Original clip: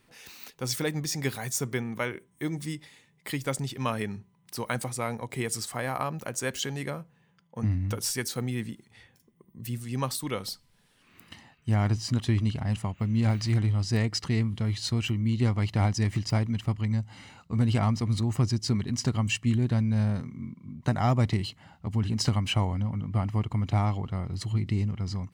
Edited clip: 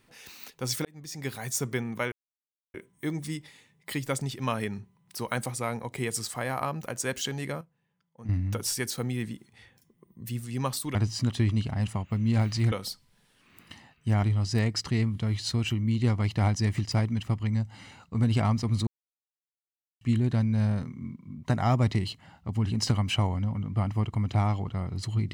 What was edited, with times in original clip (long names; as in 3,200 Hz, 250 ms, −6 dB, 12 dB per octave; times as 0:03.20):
0:00.85–0:01.55: fade in
0:02.12: splice in silence 0.62 s
0:06.99–0:07.67: clip gain −11.5 dB
0:10.33–0:11.84: move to 0:13.61
0:18.25–0:19.39: silence